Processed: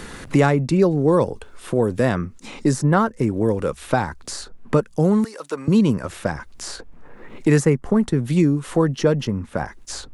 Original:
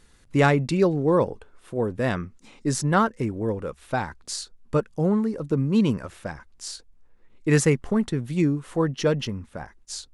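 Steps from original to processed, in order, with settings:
dynamic equaliser 3,000 Hz, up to −6 dB, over −44 dBFS, Q 0.79
0:05.24–0:05.68: high-pass filter 950 Hz 12 dB per octave
multiband upward and downward compressor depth 70%
level +5 dB

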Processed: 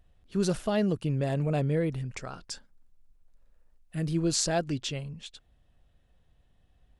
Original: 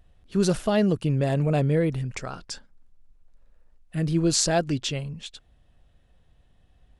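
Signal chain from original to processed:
0:02.44–0:04.17: high-shelf EQ 7,600 Hz +6.5 dB
level −5 dB

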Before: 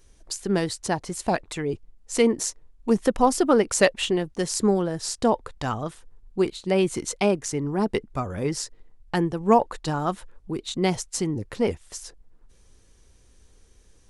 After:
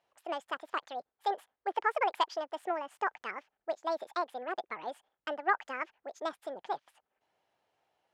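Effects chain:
wrong playback speed 45 rpm record played at 78 rpm
band-pass filter 580–2,900 Hz
level −8.5 dB

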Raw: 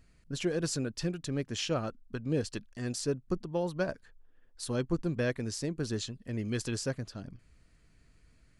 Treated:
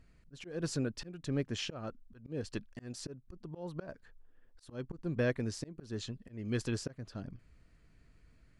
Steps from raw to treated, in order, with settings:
volume swells 267 ms
high-shelf EQ 4,300 Hz −9.5 dB

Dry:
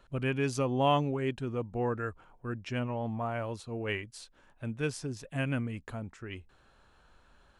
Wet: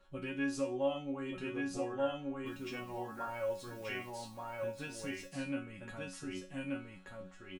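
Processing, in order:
0:02.46–0:04.09: bit-depth reduction 10 bits, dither triangular
single-tap delay 1,181 ms −3 dB
downward compressor 10 to 1, threshold −30 dBFS, peak gain reduction 10 dB
resonators tuned to a chord F#3 fifth, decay 0.32 s
level +12 dB

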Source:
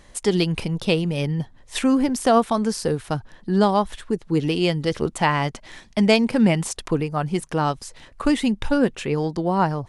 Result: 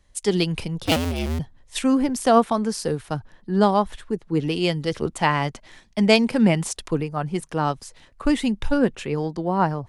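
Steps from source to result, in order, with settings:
0:00.85–0:01.39: sub-harmonics by changed cycles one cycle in 2, inverted
multiband upward and downward expander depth 40%
level −1 dB

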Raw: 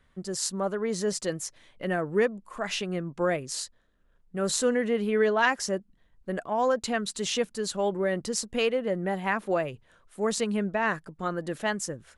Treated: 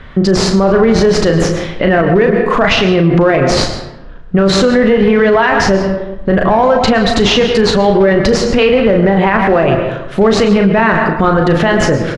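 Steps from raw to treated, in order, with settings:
high-shelf EQ 2,800 Hz +4.5 dB
in parallel at −11 dB: comparator with hysteresis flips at −24.5 dBFS
on the sum: downward compressor, threshold −31 dBFS, peak gain reduction 13.5 dB
high-frequency loss of the air 260 metres
double-tracking delay 36 ms −7 dB
on a send at −9 dB: convolution reverb RT60 0.95 s, pre-delay 103 ms
on the sum: boost into a limiter +32 dB
level −1 dB

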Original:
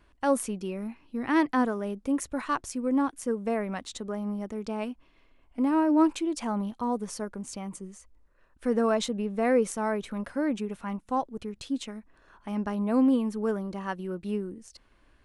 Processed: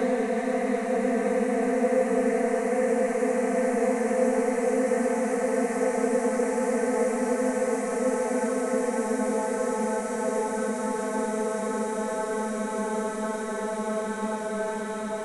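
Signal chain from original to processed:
extreme stretch with random phases 26×, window 1.00 s, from 0:09.39

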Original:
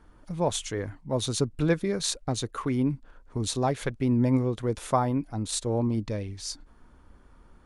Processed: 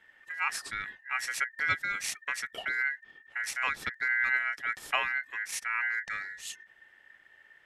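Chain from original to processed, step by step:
ring modulation 1,800 Hz
level −2.5 dB

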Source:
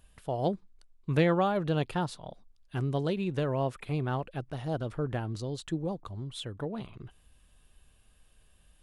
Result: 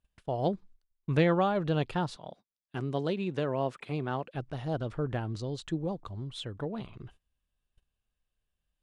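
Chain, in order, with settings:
0:02.16–0:04.35: high-pass filter 160 Hz 12 dB per octave
noise gate −52 dBFS, range −21 dB
low-pass filter 7,200 Hz 12 dB per octave

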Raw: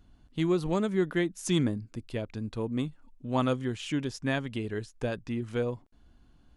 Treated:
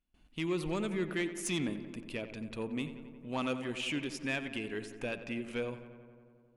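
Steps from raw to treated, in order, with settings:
noise gate with hold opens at −49 dBFS
graphic EQ with 15 bands 100 Hz −12 dB, 2,500 Hz +12 dB, 10,000 Hz +7 dB
in parallel at −3 dB: brickwall limiter −22 dBFS, peak gain reduction 9.5 dB
on the sum: soft clipping −16 dBFS, distortion −19 dB
feedback echo with a low-pass in the loop 90 ms, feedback 78%, low-pass 3,100 Hz, level −12 dB
level −9 dB

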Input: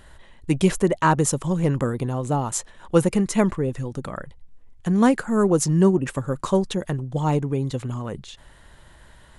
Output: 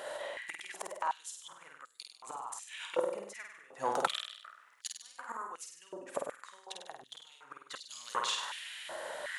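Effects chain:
gate with flip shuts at −17 dBFS, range −29 dB
soft clipping −26 dBFS, distortion −12 dB
flutter between parallel walls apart 8.5 metres, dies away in 0.7 s
high-pass on a step sequencer 2.7 Hz 570–4,500 Hz
level +6.5 dB

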